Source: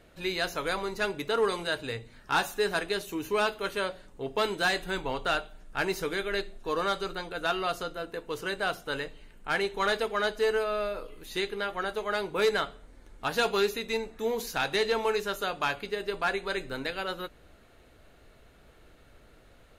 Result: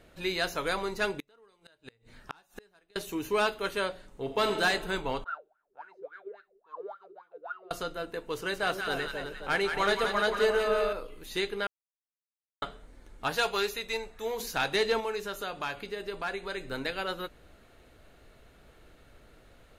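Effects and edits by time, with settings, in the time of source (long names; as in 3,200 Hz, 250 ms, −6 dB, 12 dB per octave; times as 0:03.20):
0:01.11–0:02.96: gate with flip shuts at −26 dBFS, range −34 dB
0:04.06–0:04.61: thrown reverb, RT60 1.9 s, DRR 5 dB
0:05.24–0:07.71: LFO wah 3.6 Hz 380–1,500 Hz, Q 19
0:08.36–0:10.93: echo with a time of its own for lows and highs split 930 Hz, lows 265 ms, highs 176 ms, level −5 dB
0:11.67–0:12.62: silence
0:13.35–0:14.40: parametric band 260 Hz −11.5 dB 1.2 octaves
0:15.00–0:16.68: downward compressor 1.5 to 1, threshold −39 dBFS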